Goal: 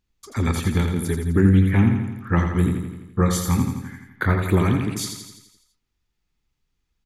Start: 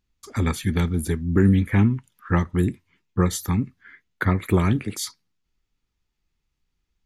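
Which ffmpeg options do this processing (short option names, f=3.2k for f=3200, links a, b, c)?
-filter_complex "[0:a]asettb=1/sr,asplit=3[a][b][c];[a]atrim=end=2.354[d];[b]atrim=start=2.35:end=4.5,asetpts=PTS-STARTPTS,afade=t=in:d=0.004:c=qsin,afade=t=out:st=2.146:d=0.004:c=qsin,asplit=2[e][f];[f]adelay=24,volume=-5dB[g];[e][g]amix=inputs=2:normalize=0,atrim=end_sample=94815[h];[c]atrim=start=4.496[i];[d][h]acrossfade=d=0.004:c1=hsin:c2=qsin[j];[j][i]acrossfade=d=0.004:c1=qsin:c2=hsin,aecho=1:1:84|168|252|336|420|504|588|672:0.501|0.291|0.169|0.0978|0.0567|0.0329|0.0191|0.0111"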